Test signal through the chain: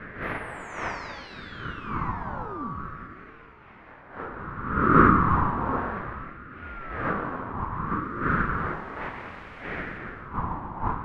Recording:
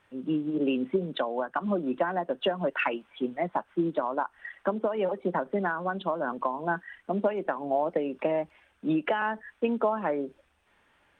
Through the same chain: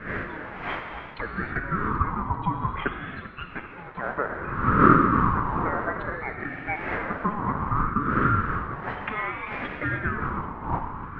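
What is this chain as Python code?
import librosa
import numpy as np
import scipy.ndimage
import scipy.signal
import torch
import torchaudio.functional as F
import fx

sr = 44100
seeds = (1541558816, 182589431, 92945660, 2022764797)

y = fx.dmg_wind(x, sr, seeds[0], corner_hz=550.0, level_db=-26.0)
y = fx.lowpass(y, sr, hz=3200.0, slope=6)
y = fx.low_shelf(y, sr, hz=340.0, db=-7.0)
y = fx.wah_lfo(y, sr, hz=0.35, low_hz=500.0, high_hz=1700.0, q=2.2)
y = fx.echo_thinned(y, sr, ms=391, feedback_pct=60, hz=170.0, wet_db=-16.0)
y = fx.rev_gated(y, sr, seeds[1], gate_ms=350, shape='flat', drr_db=4.0)
y = fx.ring_lfo(y, sr, carrier_hz=590.0, swing_pct=30, hz=0.61)
y = y * librosa.db_to_amplitude(8.0)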